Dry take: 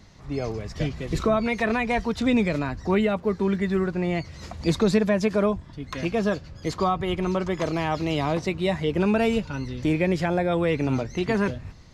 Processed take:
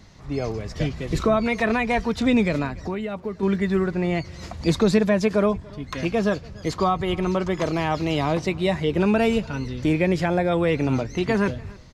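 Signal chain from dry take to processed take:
0:02.66–0:03.43: downward compressor 4 to 1, threshold −29 dBFS, peak gain reduction 10.5 dB
single-tap delay 289 ms −24 dB
level +2 dB

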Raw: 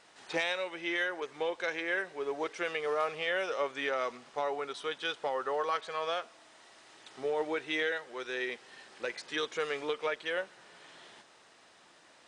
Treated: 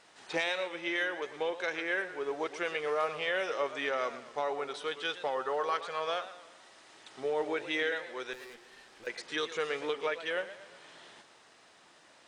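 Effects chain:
0:08.33–0:09.07: tube saturation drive 48 dB, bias 0.55
feedback echo with a swinging delay time 118 ms, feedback 48%, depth 136 cents, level −13.5 dB

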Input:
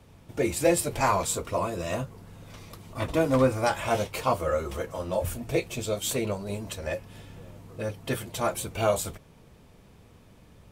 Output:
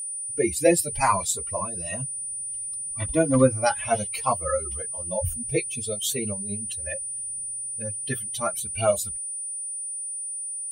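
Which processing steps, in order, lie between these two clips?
spectral dynamics exaggerated over time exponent 2
steady tone 9,300 Hz −36 dBFS
level +6 dB

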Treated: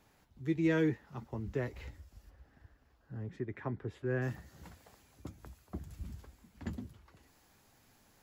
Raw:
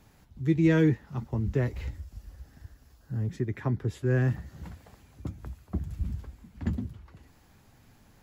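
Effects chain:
bass and treble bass −8 dB, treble −2 dB, from 0:02.29 treble −14 dB, from 0:04.21 treble +4 dB
level −4.5 dB

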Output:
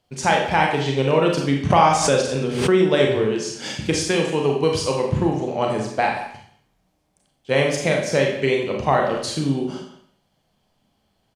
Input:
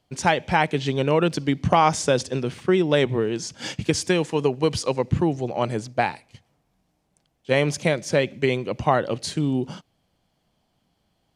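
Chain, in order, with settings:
mains-hum notches 60/120/180/240/300/360 Hz
far-end echo of a speakerphone 180 ms, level −14 dB
four-comb reverb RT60 0.56 s, combs from 29 ms, DRR 0.5 dB
0:01.70–0:02.85: background raised ahead of every attack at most 58 dB per second

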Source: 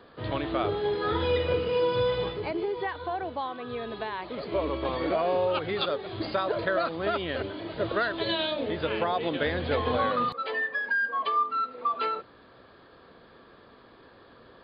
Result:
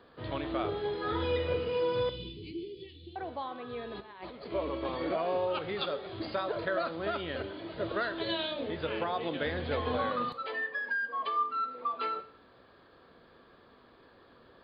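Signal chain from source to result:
0:02.09–0:03.16: elliptic band-stop filter 340–2,800 Hz, stop band 40 dB
0:03.94–0:04.52: compressor whose output falls as the input rises −39 dBFS, ratio −0.5
dense smooth reverb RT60 0.63 s, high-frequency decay 1×, DRR 11 dB
level −5.5 dB

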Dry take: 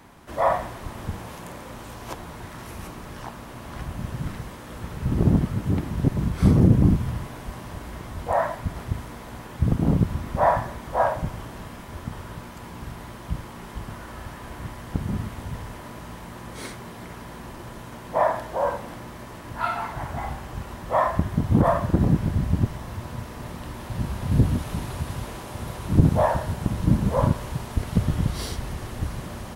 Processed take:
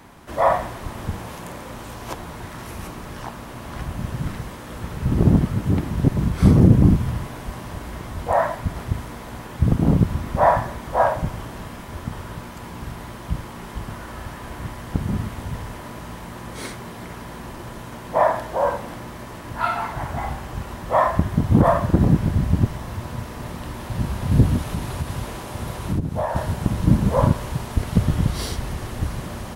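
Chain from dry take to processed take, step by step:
0:24.67–0:26.36: downward compressor 16 to 1, threshold −23 dBFS, peak gain reduction 15.5 dB
level +3.5 dB

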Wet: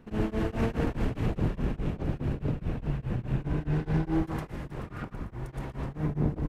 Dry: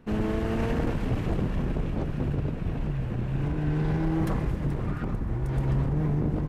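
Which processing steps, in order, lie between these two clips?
0:04.23–0:06.03: low-shelf EQ 450 Hz −8 dB
single-tap delay 115 ms −6 dB
tremolo along a rectified sine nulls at 4.8 Hz

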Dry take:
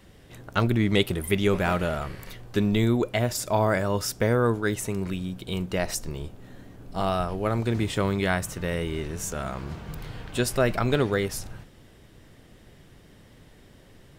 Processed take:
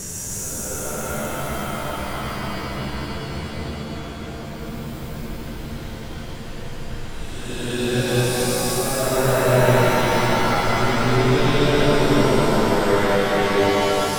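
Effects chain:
extreme stretch with random phases 6.7×, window 0.25 s, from 0:09.20
mains-hum notches 50/100 Hz
reverb with rising layers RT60 3.9 s, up +7 semitones, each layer −2 dB, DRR 2 dB
level +1.5 dB

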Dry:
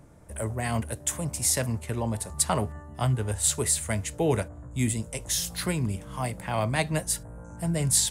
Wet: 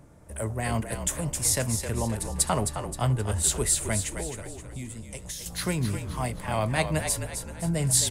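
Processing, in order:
0:04.16–0:05.46: downward compressor 5 to 1, threshold −36 dBFS, peak gain reduction 15 dB
echo with shifted repeats 263 ms, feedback 43%, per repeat −43 Hz, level −7.5 dB

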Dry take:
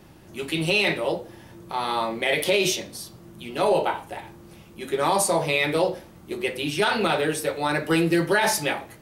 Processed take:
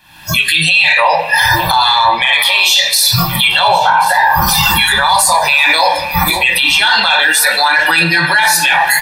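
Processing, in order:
camcorder AGC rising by 77 dB per second
first-order pre-emphasis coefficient 0.8
noise reduction from a noise print of the clip's start 26 dB
flat-topped bell 1,900 Hz +14 dB 2.6 octaves
comb filter 1.2 ms, depth 74%
reversed playback
downward compressor 6 to 1, threshold −29 dBFS, peak gain reduction 17.5 dB
reversed playback
soft clipping −18.5 dBFS, distortion −26 dB
flanger 0.64 Hz, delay 2.8 ms, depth 6.3 ms, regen −84%
on a send: delay that swaps between a low-pass and a high-pass 538 ms, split 2,100 Hz, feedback 57%, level −14 dB
on the sum: rectangular room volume 1,700 cubic metres, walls mixed, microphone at 0.43 metres
boost into a limiter +33 dB
level −1 dB

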